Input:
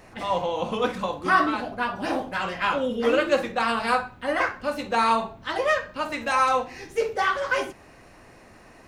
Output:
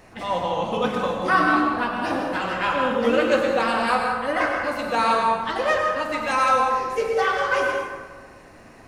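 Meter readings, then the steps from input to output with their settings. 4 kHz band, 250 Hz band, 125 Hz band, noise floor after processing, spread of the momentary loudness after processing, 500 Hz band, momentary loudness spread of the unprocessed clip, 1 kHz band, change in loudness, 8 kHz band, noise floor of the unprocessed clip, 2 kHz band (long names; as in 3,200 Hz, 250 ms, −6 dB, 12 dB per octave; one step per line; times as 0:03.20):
+1.5 dB, +3.5 dB, +3.5 dB, −47 dBFS, 6 LU, +3.0 dB, 8 LU, +3.0 dB, +3.0 dB, +1.5 dB, −50 dBFS, +3.0 dB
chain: dense smooth reverb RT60 1.5 s, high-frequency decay 0.55×, pre-delay 85 ms, DRR 1 dB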